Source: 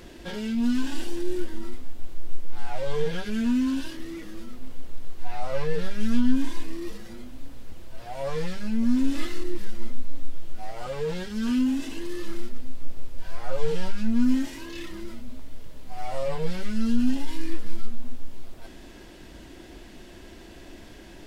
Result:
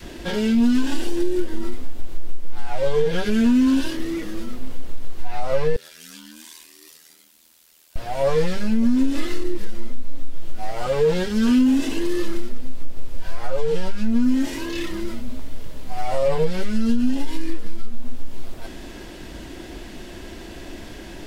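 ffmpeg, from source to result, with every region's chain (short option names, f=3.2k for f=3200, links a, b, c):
-filter_complex "[0:a]asettb=1/sr,asplit=3[a][b][c];[a]atrim=end=5.764[d];[b]atrim=start=5.76:end=7.96,asetpts=PTS-STARTPTS,afade=t=in:d=0.004:c=qsin,afade=t=out:st=2.196:d=0.004:c=qsin,aderivative,aeval=exprs='val(0)*sin(2*PI*40*n/s)':c=same[e];[c]atrim=start=7.956[f];[d][e]acrossfade=d=0.004:c1=hsin:c2=qsin[g];[g][f]acrossfade=d=0.004:c1=qsin:c2=hsin,adynamicequalizer=threshold=0.0112:dfrequency=450:dqfactor=1.3:tfrequency=450:tqfactor=1.3:attack=5:release=100:ratio=0.375:range=2.5:mode=boostabove:tftype=bell,acompressor=threshold=-21dB:ratio=6,volume=8.5dB"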